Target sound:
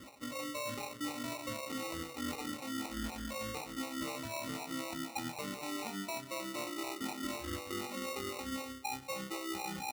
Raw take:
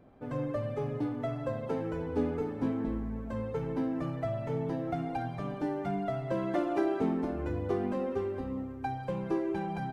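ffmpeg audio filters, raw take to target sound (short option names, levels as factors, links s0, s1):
-filter_complex "[0:a]aecho=1:1:3.5:0.78,asplit=2[s0][s1];[s1]aecho=0:1:663:0.133[s2];[s0][s2]amix=inputs=2:normalize=0,acrossover=split=450[s3][s4];[s3]aeval=exprs='val(0)*(1-1/2+1/2*cos(2*PI*4*n/s))':c=same[s5];[s4]aeval=exprs='val(0)*(1-1/2-1/2*cos(2*PI*4*n/s))':c=same[s6];[s5][s6]amix=inputs=2:normalize=0,acrusher=samples=27:mix=1:aa=0.000001,highpass=61,tiltshelf=f=970:g=-4,areverse,acompressor=threshold=0.00398:ratio=12,areverse,volume=3.98"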